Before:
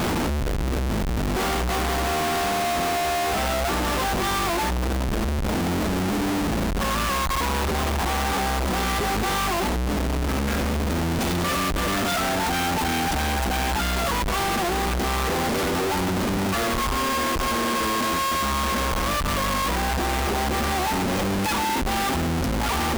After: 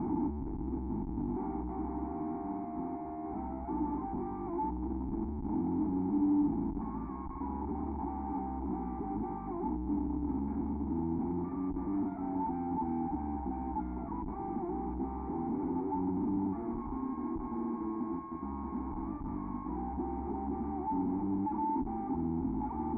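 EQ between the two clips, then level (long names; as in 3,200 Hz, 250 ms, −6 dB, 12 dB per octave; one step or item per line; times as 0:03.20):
formant resonators in series u
low-shelf EQ 300 Hz −8.5 dB
phaser with its sweep stopped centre 1,300 Hz, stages 4
+7.5 dB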